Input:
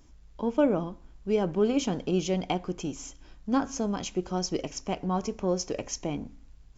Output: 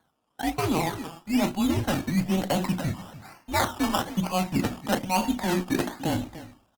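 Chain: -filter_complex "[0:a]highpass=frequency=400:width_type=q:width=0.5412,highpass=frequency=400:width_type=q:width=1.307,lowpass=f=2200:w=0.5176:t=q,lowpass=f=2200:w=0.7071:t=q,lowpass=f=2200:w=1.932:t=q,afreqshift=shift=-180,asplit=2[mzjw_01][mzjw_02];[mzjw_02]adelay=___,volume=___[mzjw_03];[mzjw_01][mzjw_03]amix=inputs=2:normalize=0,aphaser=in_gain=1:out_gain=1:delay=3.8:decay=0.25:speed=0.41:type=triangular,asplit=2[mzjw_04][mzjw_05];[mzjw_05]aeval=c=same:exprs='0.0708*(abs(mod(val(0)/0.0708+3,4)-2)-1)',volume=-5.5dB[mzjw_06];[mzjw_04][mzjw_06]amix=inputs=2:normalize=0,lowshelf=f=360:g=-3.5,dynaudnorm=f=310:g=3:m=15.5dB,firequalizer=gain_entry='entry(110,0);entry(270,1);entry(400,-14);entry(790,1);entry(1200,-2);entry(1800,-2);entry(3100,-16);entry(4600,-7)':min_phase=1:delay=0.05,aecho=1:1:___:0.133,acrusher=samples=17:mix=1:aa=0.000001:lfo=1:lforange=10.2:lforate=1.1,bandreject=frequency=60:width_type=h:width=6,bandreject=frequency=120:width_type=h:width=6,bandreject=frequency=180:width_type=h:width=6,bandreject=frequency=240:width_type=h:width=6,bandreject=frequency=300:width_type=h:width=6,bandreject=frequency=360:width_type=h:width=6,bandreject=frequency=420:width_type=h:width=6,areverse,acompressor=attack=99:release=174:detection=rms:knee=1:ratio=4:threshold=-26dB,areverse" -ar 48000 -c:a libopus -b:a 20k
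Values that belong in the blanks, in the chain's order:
37, -12.5dB, 296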